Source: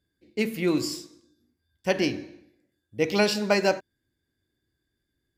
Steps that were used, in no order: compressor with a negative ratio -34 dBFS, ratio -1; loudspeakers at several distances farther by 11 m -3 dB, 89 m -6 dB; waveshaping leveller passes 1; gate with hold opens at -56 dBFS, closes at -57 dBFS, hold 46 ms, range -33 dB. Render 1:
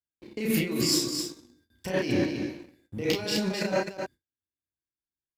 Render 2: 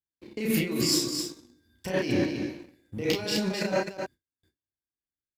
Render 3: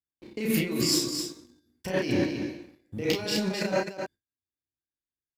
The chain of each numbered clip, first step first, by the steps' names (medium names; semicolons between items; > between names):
compressor with a negative ratio > loudspeakers at several distances > waveshaping leveller > gate with hold; compressor with a negative ratio > loudspeakers at several distances > gate with hold > waveshaping leveller; compressor with a negative ratio > waveshaping leveller > gate with hold > loudspeakers at several distances